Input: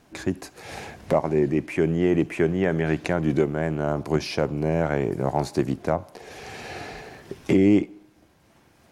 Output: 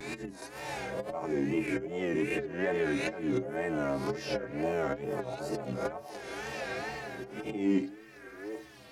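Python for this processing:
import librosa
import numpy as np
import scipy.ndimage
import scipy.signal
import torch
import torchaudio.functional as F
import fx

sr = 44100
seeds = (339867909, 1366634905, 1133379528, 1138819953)

p1 = fx.spec_swells(x, sr, rise_s=0.65)
p2 = fx.low_shelf(p1, sr, hz=170.0, db=-7.5)
p3 = fx.auto_swell(p2, sr, attack_ms=304.0)
p4 = fx.stiff_resonator(p3, sr, f0_hz=62.0, decay_s=0.31, stiffness=0.03)
p5 = np.clip(p4, -10.0 ** (-30.5 / 20.0), 10.0 ** (-30.5 / 20.0))
p6 = p4 + (p5 * librosa.db_to_amplitude(-9.5))
p7 = fx.echo_stepped(p6, sr, ms=773, hz=590.0, octaves=1.4, feedback_pct=70, wet_db=-9.0)
p8 = fx.wow_flutter(p7, sr, seeds[0], rate_hz=2.1, depth_cents=120.0)
y = fx.band_squash(p8, sr, depth_pct=40)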